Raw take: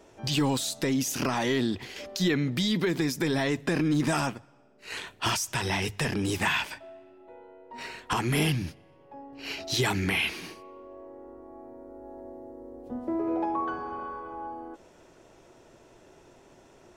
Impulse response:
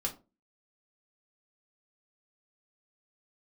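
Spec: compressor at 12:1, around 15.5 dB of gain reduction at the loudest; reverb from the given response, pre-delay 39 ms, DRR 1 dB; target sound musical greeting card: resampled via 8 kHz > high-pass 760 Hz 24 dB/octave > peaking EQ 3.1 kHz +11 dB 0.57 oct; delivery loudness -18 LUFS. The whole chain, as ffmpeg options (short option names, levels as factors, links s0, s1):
-filter_complex "[0:a]acompressor=threshold=0.0126:ratio=12,asplit=2[s0][s1];[1:a]atrim=start_sample=2205,adelay=39[s2];[s1][s2]afir=irnorm=-1:irlink=0,volume=0.668[s3];[s0][s3]amix=inputs=2:normalize=0,aresample=8000,aresample=44100,highpass=f=760:w=0.5412,highpass=f=760:w=1.3066,equalizer=f=3100:t=o:w=0.57:g=11,volume=10"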